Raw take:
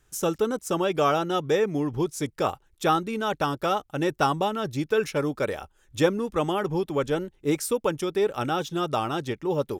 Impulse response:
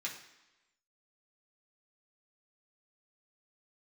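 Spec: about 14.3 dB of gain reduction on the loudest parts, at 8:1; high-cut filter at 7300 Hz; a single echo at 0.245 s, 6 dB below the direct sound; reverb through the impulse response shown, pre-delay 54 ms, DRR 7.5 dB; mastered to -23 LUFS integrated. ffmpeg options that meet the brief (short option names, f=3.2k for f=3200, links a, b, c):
-filter_complex "[0:a]lowpass=7.3k,acompressor=threshold=-30dB:ratio=8,aecho=1:1:245:0.501,asplit=2[a][b];[1:a]atrim=start_sample=2205,adelay=54[c];[b][c]afir=irnorm=-1:irlink=0,volume=-9dB[d];[a][d]amix=inputs=2:normalize=0,volume=10.5dB"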